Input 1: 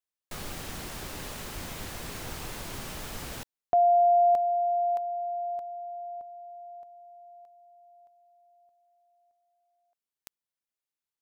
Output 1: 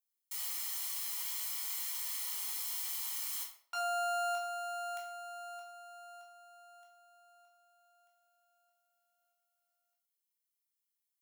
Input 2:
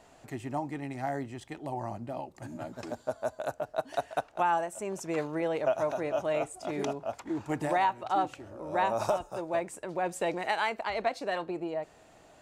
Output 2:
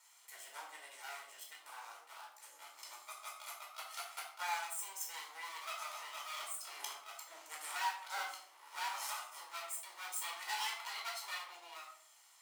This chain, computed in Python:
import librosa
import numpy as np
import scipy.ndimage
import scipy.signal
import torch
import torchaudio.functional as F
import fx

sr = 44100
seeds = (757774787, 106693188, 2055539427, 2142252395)

y = fx.lower_of_two(x, sr, delay_ms=0.95)
y = scipy.signal.sosfilt(scipy.signal.butter(4, 500.0, 'highpass', fs=sr, output='sos'), y)
y = np.diff(y, prepend=0.0)
y = fx.room_shoebox(y, sr, seeds[0], volume_m3=870.0, walls='furnished', distance_m=4.6)